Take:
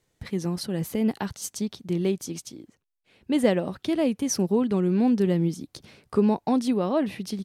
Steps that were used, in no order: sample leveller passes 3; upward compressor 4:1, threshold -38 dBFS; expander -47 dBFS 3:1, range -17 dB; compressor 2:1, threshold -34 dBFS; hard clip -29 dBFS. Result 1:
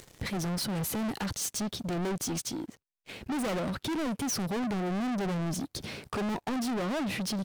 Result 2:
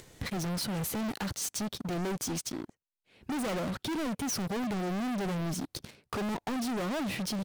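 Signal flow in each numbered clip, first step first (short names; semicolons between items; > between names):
hard clip > compressor > sample leveller > expander > upward compressor; expander > sample leveller > hard clip > upward compressor > compressor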